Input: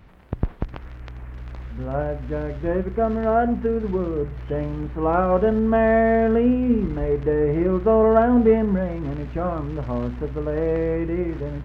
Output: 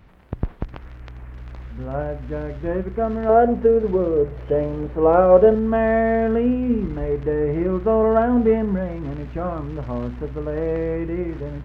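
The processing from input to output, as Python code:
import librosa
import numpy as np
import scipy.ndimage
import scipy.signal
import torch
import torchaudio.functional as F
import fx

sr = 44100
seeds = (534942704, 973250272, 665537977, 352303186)

y = fx.peak_eq(x, sr, hz=510.0, db=10.5, octaves=0.93, at=(3.29, 5.55))
y = y * 10.0 ** (-1.0 / 20.0)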